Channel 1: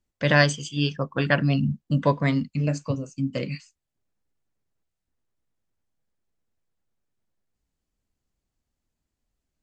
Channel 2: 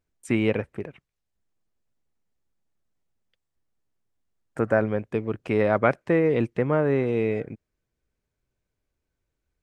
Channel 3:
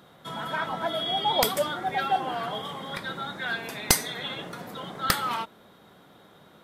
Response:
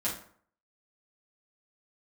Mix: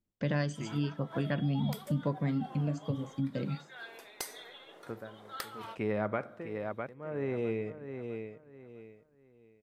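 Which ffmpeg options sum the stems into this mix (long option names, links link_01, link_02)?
-filter_complex "[0:a]equalizer=frequency=200:width=0.37:gain=11.5,volume=-12dB,asplit=2[link_01][link_02];[link_02]volume=-22dB[link_03];[1:a]aeval=exprs='val(0)*pow(10,-29*(0.5-0.5*cos(2*PI*0.7*n/s))/20)':channel_layout=same,adelay=300,volume=-4.5dB,asplit=3[link_04][link_05][link_06];[link_05]volume=-18dB[link_07];[link_06]volume=-10dB[link_08];[2:a]lowshelf=frequency=270:width_type=q:width=1.5:gain=-12,tremolo=f=2.2:d=0.44,adelay=300,volume=-14dB[link_09];[3:a]atrim=start_sample=2205[link_10];[link_03][link_07]amix=inputs=2:normalize=0[link_11];[link_11][link_10]afir=irnorm=-1:irlink=0[link_12];[link_08]aecho=0:1:655|1310|1965|2620:1|0.28|0.0784|0.022[link_13];[link_01][link_04][link_09][link_12][link_13]amix=inputs=5:normalize=0,acompressor=threshold=-31dB:ratio=2.5"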